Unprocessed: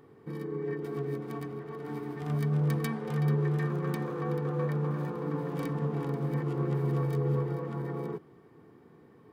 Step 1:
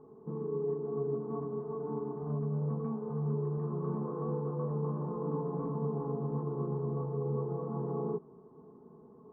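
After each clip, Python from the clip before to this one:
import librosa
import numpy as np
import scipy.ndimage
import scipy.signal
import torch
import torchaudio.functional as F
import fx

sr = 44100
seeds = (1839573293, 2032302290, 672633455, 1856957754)

y = scipy.signal.sosfilt(scipy.signal.cheby1(4, 1.0, 1100.0, 'lowpass', fs=sr, output='sos'), x)
y = y + 0.64 * np.pad(y, (int(4.7 * sr / 1000.0), 0))[:len(y)]
y = fx.rider(y, sr, range_db=3, speed_s=0.5)
y = y * 10.0 ** (-3.0 / 20.0)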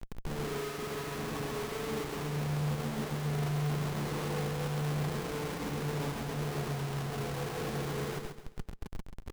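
y = fx.schmitt(x, sr, flips_db=-46.5)
y = fx.echo_feedback(y, sr, ms=135, feedback_pct=42, wet_db=-4)
y = fx.upward_expand(y, sr, threshold_db=-51.0, expansion=1.5)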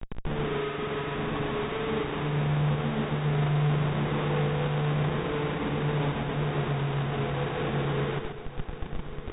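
y = fx.brickwall_lowpass(x, sr, high_hz=3800.0)
y = y + 10.0 ** (-13.0 / 20.0) * np.pad(y, (int(1155 * sr / 1000.0), 0))[:len(y)]
y = y * 10.0 ** (6.5 / 20.0)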